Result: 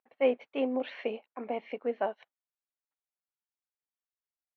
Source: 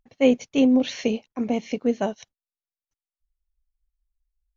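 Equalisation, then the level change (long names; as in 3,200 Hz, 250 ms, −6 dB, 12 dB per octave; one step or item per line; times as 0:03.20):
band-pass filter 620–2,400 Hz
high-frequency loss of the air 340 metres
0.0 dB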